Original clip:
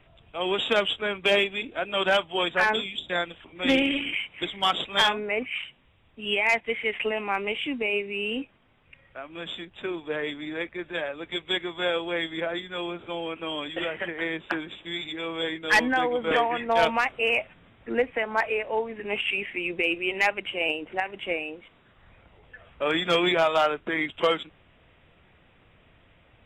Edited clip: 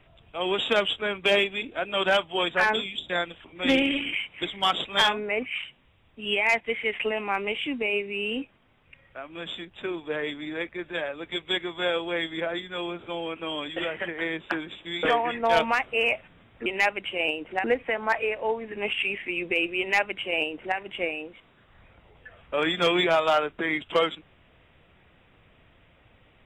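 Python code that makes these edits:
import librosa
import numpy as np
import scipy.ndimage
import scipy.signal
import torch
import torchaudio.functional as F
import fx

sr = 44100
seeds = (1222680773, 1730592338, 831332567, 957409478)

y = fx.edit(x, sr, fx.cut(start_s=15.03, length_s=1.26),
    fx.duplicate(start_s=20.07, length_s=0.98, to_s=17.92), tone=tone)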